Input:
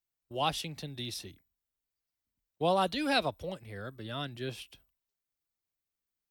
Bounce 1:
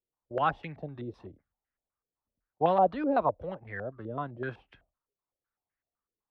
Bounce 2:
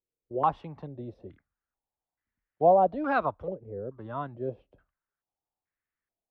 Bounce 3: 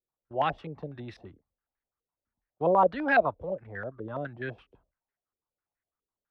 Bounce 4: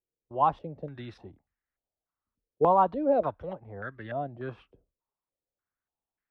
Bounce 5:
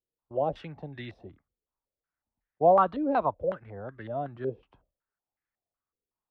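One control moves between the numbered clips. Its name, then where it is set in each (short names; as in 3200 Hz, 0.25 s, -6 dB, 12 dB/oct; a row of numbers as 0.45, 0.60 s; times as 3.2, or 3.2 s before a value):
stepped low-pass, rate: 7.9, 2.3, 12, 3.4, 5.4 Hz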